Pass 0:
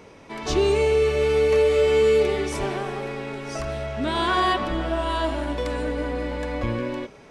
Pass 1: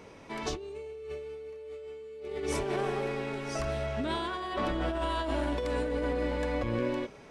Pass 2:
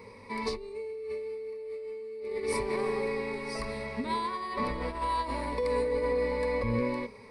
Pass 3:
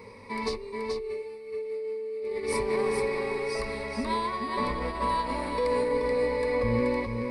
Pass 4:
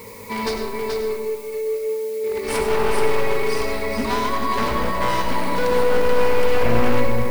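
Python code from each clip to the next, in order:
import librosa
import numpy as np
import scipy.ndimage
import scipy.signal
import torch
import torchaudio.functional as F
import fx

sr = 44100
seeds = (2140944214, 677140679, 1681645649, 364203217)

y1 = fx.dynamic_eq(x, sr, hz=430.0, q=2.2, threshold_db=-33.0, ratio=4.0, max_db=6)
y1 = fx.over_compress(y1, sr, threshold_db=-26.0, ratio=-1.0)
y1 = y1 * 10.0 ** (-9.0 / 20.0)
y2 = fx.ripple_eq(y1, sr, per_octave=0.92, db=16)
y2 = y2 * 10.0 ** (-2.5 / 20.0)
y3 = y2 + 10.0 ** (-5.0 / 20.0) * np.pad(y2, (int(430 * sr / 1000.0), 0))[:len(y2)]
y3 = y3 * 10.0 ** (2.0 / 20.0)
y4 = np.minimum(y3, 2.0 * 10.0 ** (-27.5 / 20.0) - y3)
y4 = fx.dmg_noise_colour(y4, sr, seeds[0], colour='blue', level_db=-52.0)
y4 = fx.rev_freeverb(y4, sr, rt60_s=1.6, hf_ratio=0.4, predelay_ms=50, drr_db=3.5)
y4 = y4 * 10.0 ** (7.0 / 20.0)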